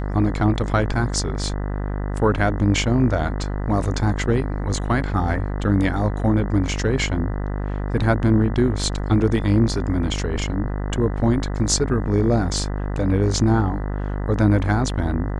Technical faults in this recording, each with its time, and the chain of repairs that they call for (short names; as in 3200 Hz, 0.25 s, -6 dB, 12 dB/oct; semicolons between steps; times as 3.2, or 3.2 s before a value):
buzz 50 Hz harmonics 40 -25 dBFS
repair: de-hum 50 Hz, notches 40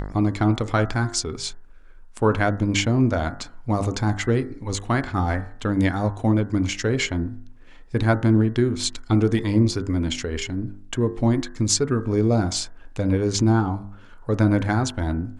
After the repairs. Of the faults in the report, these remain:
none